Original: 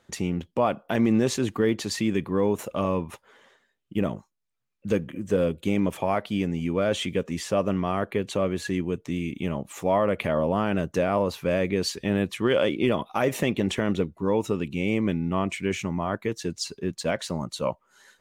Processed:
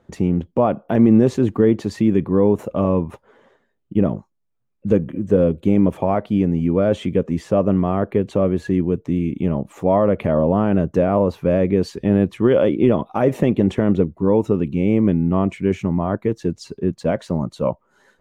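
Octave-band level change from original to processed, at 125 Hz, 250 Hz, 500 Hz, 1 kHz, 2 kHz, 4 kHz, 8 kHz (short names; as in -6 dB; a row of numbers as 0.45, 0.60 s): +9.0 dB, +9.0 dB, +7.0 dB, +3.5 dB, -2.5 dB, -6.5 dB, n/a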